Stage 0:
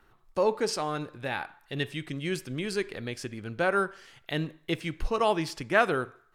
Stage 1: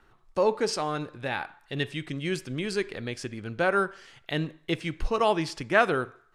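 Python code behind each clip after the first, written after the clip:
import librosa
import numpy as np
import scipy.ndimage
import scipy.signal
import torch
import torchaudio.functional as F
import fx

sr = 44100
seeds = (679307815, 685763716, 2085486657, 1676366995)

y = scipy.signal.sosfilt(scipy.signal.butter(2, 9600.0, 'lowpass', fs=sr, output='sos'), x)
y = y * librosa.db_to_amplitude(1.5)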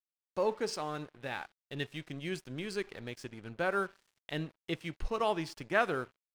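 y = np.sign(x) * np.maximum(np.abs(x) - 10.0 ** (-46.0 / 20.0), 0.0)
y = y * librosa.db_to_amplitude(-7.0)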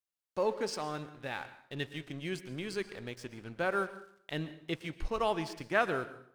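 y = fx.rev_plate(x, sr, seeds[0], rt60_s=0.62, hf_ratio=0.85, predelay_ms=105, drr_db=13.5)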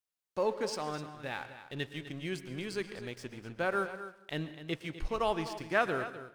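y = x + 10.0 ** (-13.0 / 20.0) * np.pad(x, (int(252 * sr / 1000.0), 0))[:len(x)]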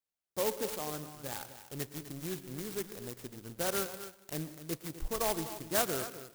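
y = fx.clock_jitter(x, sr, seeds[1], jitter_ms=0.14)
y = y * librosa.db_to_amplitude(-1.5)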